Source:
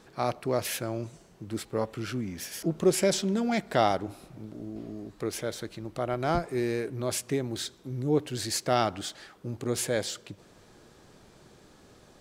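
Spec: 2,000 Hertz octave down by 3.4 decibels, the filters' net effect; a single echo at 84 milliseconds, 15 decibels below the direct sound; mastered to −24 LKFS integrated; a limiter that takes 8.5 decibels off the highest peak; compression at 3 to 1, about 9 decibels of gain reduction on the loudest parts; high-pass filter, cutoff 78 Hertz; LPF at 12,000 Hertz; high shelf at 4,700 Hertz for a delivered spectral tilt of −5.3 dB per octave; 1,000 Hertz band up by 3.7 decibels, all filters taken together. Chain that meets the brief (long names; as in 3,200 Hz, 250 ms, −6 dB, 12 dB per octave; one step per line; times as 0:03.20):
high-pass filter 78 Hz
low-pass filter 12,000 Hz
parametric band 1,000 Hz +7.5 dB
parametric band 2,000 Hz −6 dB
high-shelf EQ 4,700 Hz −8.5 dB
downward compressor 3 to 1, threshold −28 dBFS
brickwall limiter −23.5 dBFS
single-tap delay 84 ms −15 dB
level +12 dB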